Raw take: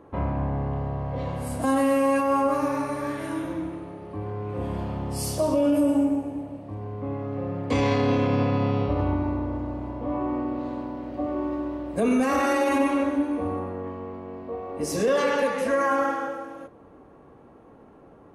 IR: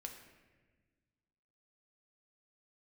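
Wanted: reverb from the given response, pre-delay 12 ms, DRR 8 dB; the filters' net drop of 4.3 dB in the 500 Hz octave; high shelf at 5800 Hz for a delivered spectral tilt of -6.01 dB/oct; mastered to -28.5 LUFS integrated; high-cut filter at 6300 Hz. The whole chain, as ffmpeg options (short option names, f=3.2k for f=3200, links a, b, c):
-filter_complex "[0:a]lowpass=6.3k,equalizer=f=500:t=o:g=-5,highshelf=f=5.8k:g=4,asplit=2[a][b];[1:a]atrim=start_sample=2205,adelay=12[c];[b][c]afir=irnorm=-1:irlink=0,volume=-4dB[d];[a][d]amix=inputs=2:normalize=0,volume=-1dB"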